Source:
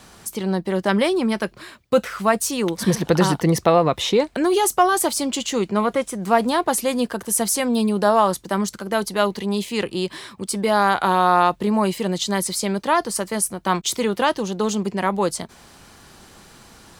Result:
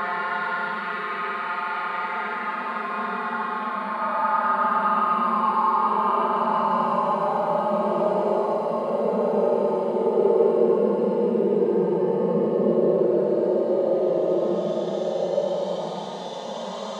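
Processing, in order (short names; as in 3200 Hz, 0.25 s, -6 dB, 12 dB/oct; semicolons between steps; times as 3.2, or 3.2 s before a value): Schroeder reverb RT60 1.5 s, combs from 32 ms, DRR -6.5 dB; wah 1.3 Hz 440–1900 Hz, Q 2.9; Paulstretch 27×, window 0.05 s, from 11.67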